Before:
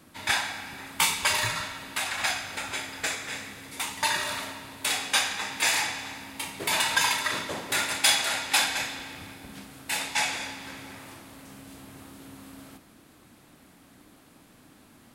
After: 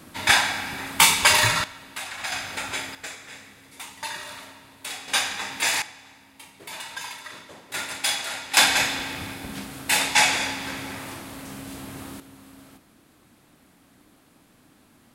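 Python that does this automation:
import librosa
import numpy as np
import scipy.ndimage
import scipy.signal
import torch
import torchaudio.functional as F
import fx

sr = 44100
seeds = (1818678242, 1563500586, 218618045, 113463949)

y = fx.gain(x, sr, db=fx.steps((0.0, 8.0), (1.64, -4.0), (2.32, 3.0), (2.95, -7.0), (5.08, 1.0), (5.82, -11.5), (7.74, -3.5), (8.57, 8.5), (12.2, -2.0)))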